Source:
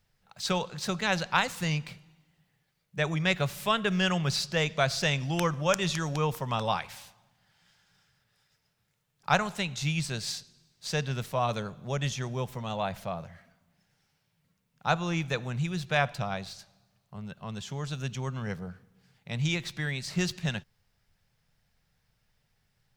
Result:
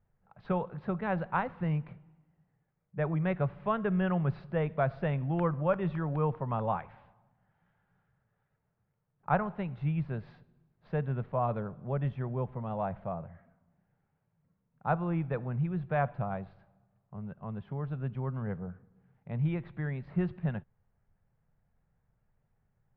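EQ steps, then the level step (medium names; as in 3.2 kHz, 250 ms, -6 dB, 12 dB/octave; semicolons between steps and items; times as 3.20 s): low-pass 1.3 kHz 12 dB/octave; distance through air 410 m; 0.0 dB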